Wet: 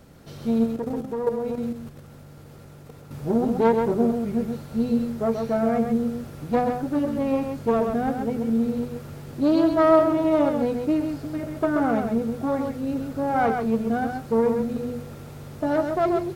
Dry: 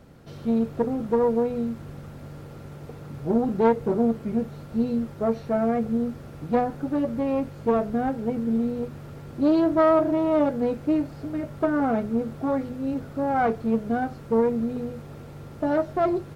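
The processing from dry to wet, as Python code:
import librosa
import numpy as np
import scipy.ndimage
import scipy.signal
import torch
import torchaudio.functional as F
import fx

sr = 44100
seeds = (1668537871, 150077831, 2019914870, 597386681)

y = fx.high_shelf(x, sr, hz=4100.0, db=8.0)
y = y + 10.0 ** (-5.5 / 20.0) * np.pad(y, (int(132 * sr / 1000.0), 0))[:len(y)]
y = fx.level_steps(y, sr, step_db=9, at=(0.66, 3.11))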